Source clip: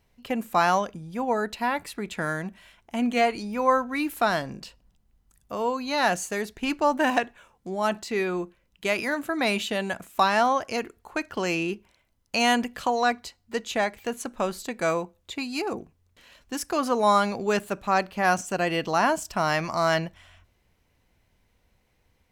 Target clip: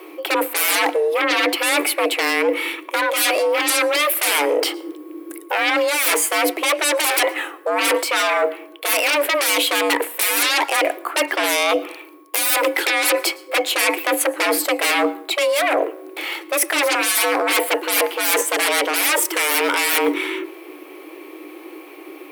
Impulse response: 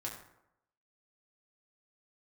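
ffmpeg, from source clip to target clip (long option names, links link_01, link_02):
-filter_complex "[0:a]bass=frequency=250:gain=3,treble=frequency=4000:gain=-11,aeval=exprs='0.376*sin(PI/2*10*val(0)/0.376)':channel_layout=same,aexciter=amount=6.3:drive=2.9:freq=8600,afreqshift=290,equalizer=frequency=2300:width=3.7:gain=6.5,areverse,acompressor=threshold=-18dB:ratio=6,areverse,aeval=exprs='val(0)+0.00224*sin(2*PI*1100*n/s)':channel_layout=same,asplit=2[link_01][link_02];[1:a]atrim=start_sample=2205,adelay=110[link_03];[link_02][link_03]afir=irnorm=-1:irlink=0,volume=-21.5dB[link_04];[link_01][link_04]amix=inputs=2:normalize=0,volume=2dB"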